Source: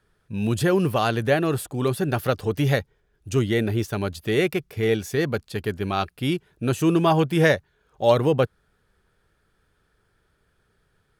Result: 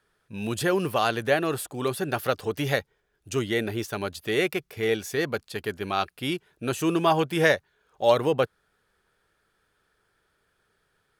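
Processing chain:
low-shelf EQ 250 Hz −12 dB

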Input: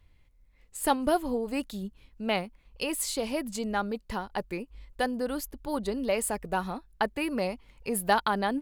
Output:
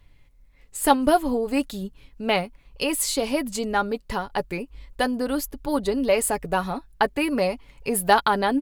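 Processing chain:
comb filter 7.1 ms, depth 36%
level +6 dB

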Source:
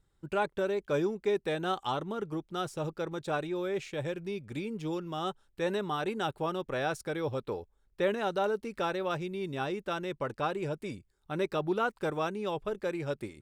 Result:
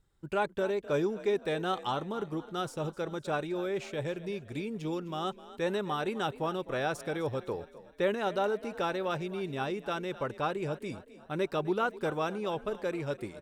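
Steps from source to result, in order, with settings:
echo with shifted repeats 257 ms, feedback 45%, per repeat +36 Hz, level −16.5 dB

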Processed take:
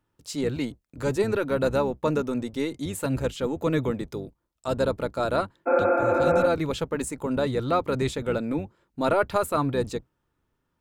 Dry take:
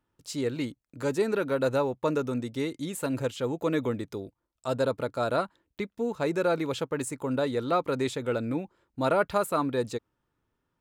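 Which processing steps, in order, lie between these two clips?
sub-octave generator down 1 octave, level −4 dB
healed spectral selection 0:05.69–0:06.44, 210–2,600 Hz after
level +2 dB

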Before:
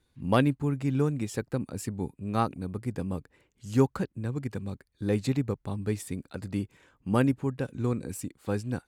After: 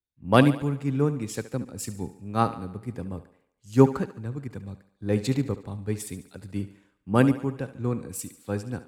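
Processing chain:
feedback echo with a high-pass in the loop 72 ms, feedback 67%, high-pass 180 Hz, level −13 dB
multiband upward and downward expander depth 70%
level +1 dB

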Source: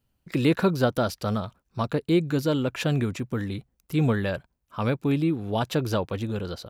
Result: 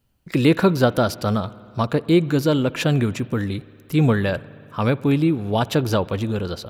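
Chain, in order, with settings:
spring reverb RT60 2.7 s, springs 59 ms, chirp 30 ms, DRR 19.5 dB
level +5.5 dB

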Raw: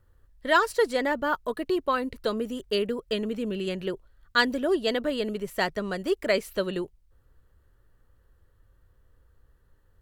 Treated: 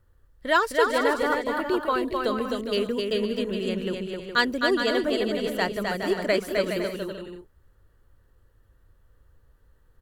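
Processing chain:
bouncing-ball delay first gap 260 ms, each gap 0.6×, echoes 5

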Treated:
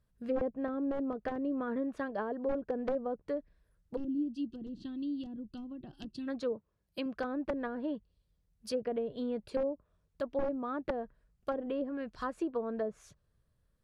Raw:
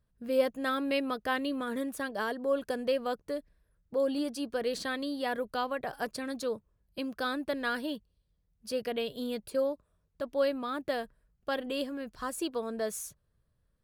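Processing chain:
wavefolder on the positive side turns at −23.5 dBFS
0:06.52–0:07.06: high-pass filter 160 Hz 6 dB per octave
wrap-around overflow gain 22 dB
treble cut that deepens with the level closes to 560 Hz, closed at −28 dBFS
0:03.96–0:06.27: gain on a spectral selection 380–2,600 Hz −21 dB

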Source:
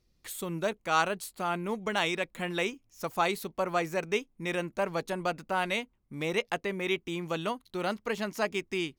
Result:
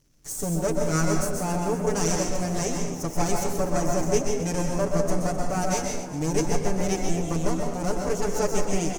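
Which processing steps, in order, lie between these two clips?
lower of the sound and its delayed copy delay 6.9 ms
drawn EQ curve 320 Hz 0 dB, 3,700 Hz −19 dB, 6,100 Hz +7 dB, 13,000 Hz −4 dB
surface crackle 320 per second −65 dBFS
echo with shifted repeats 259 ms, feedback 60%, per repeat +76 Hz, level −14 dB
convolution reverb RT60 0.80 s, pre-delay 124 ms, DRR 1.5 dB
level +8.5 dB

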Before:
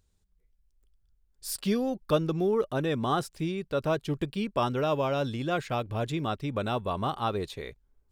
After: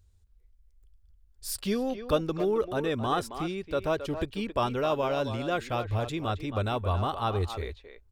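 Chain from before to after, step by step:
low shelf with overshoot 110 Hz +7.5 dB, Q 3
far-end echo of a speakerphone 270 ms, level −9 dB

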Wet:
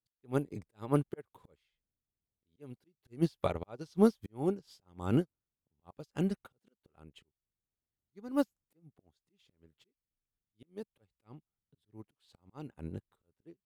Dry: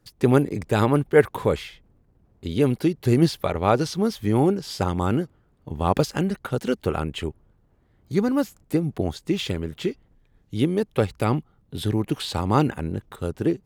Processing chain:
volume swells 369 ms
dynamic equaliser 1,800 Hz, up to −4 dB, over −48 dBFS, Q 2
expander for the loud parts 2.5 to 1, over −42 dBFS

